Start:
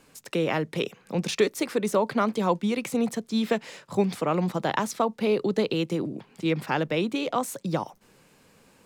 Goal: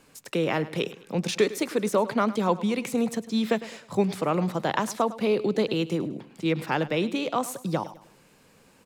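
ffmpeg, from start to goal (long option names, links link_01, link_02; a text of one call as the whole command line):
ffmpeg -i in.wav -af "aecho=1:1:104|208|312:0.15|0.0584|0.0228" out.wav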